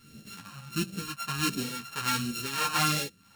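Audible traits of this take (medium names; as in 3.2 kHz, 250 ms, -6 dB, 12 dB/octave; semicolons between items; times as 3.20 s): a buzz of ramps at a fixed pitch in blocks of 32 samples; phasing stages 2, 1.4 Hz, lowest notch 320–1000 Hz; tremolo triangle 1.5 Hz, depth 75%; a shimmering, thickened sound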